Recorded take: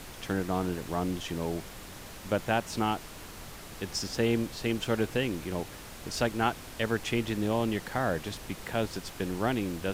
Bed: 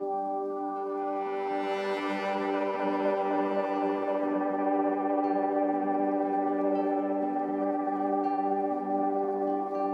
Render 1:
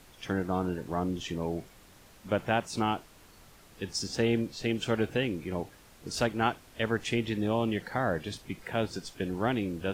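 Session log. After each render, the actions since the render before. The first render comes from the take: noise print and reduce 11 dB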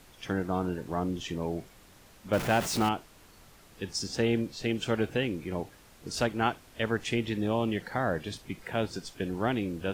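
2.33–2.89 s: jump at every zero crossing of -30 dBFS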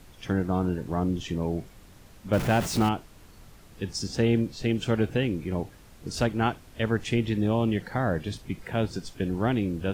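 bass shelf 250 Hz +9 dB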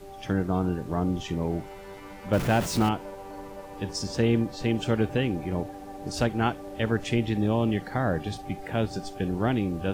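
add bed -13 dB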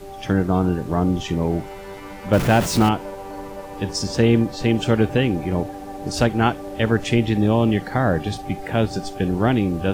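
trim +7 dB

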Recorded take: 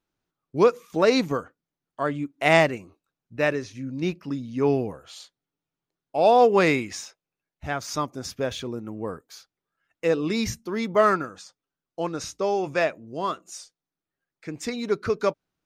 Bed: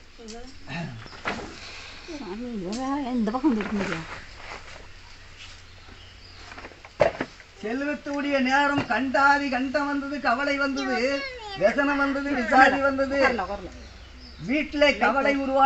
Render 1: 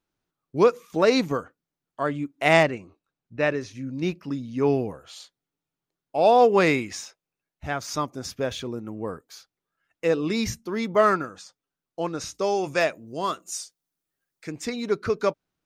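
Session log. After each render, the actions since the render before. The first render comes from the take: 2.63–3.61 s: distance through air 70 m; 12.34–14.52 s: treble shelf 5.2 kHz +11.5 dB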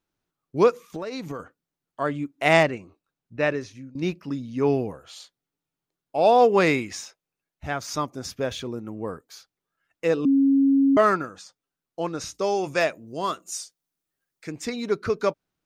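0.85–1.40 s: compression 16:1, threshold -28 dBFS; 3.47–3.95 s: fade out equal-power, to -18.5 dB; 10.25–10.97 s: bleep 274 Hz -15 dBFS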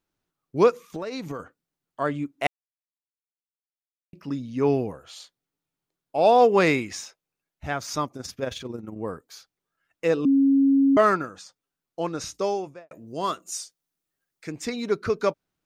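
2.47–4.13 s: mute; 8.07–8.96 s: AM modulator 22 Hz, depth 40%; 12.36–12.91 s: studio fade out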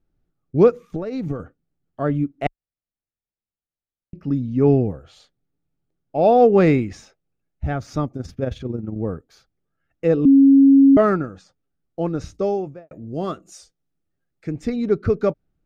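tilt EQ -4 dB/octave; band-stop 1 kHz, Q 5.5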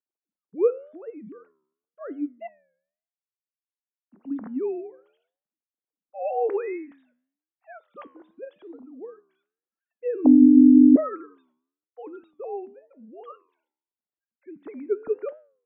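formants replaced by sine waves; flange 0.91 Hz, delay 8.7 ms, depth 5.9 ms, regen -87%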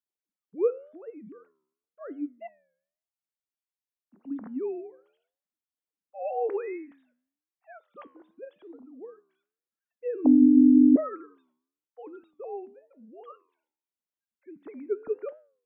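trim -4 dB

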